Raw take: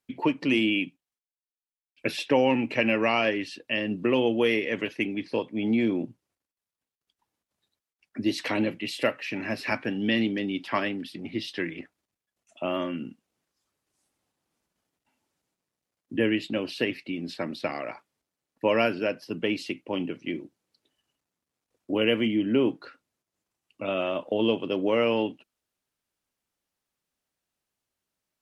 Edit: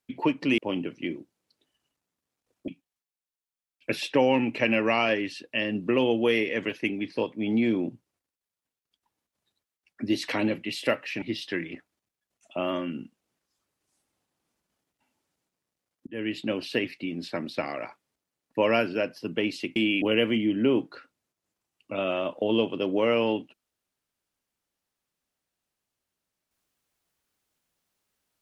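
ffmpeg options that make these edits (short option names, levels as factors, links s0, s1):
-filter_complex "[0:a]asplit=7[s0][s1][s2][s3][s4][s5][s6];[s0]atrim=end=0.582[s7];[s1]atrim=start=19.818:end=21.922[s8];[s2]atrim=start=0.838:end=9.382[s9];[s3]atrim=start=11.278:end=16.13,asetpts=PTS-STARTPTS,afade=t=out:st=4.848:d=0.004:c=hsin[s10];[s4]atrim=start=16.13:end=19.822,asetpts=PTS-STARTPTS,afade=t=in:d=0.35[s11];[s5]atrim=start=0.578:end=0.842[s12];[s6]atrim=start=21.918[s13];[s7][s8]acrossfade=d=0.004:c1=hsin:c2=hsin[s14];[s14][s9]acrossfade=d=0.004:c1=hsin:c2=hsin[s15];[s10][s11]concat=n=2:v=0:a=1[s16];[s15][s16]acrossfade=d=0.004:c1=hsin:c2=hsin[s17];[s17][s12]acrossfade=d=0.004:c1=hsin:c2=hsin[s18];[s18][s13]acrossfade=d=0.004:c1=hsin:c2=hsin"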